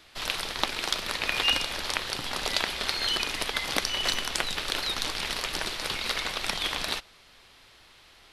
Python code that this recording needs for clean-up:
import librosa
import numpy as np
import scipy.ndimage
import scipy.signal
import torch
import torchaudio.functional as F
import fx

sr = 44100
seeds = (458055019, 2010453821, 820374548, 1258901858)

y = fx.fix_interpolate(x, sr, at_s=(4.14,), length_ms=1.3)